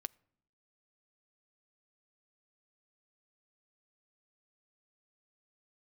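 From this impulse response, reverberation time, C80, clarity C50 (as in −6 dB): non-exponential decay, 29.5 dB, 27.0 dB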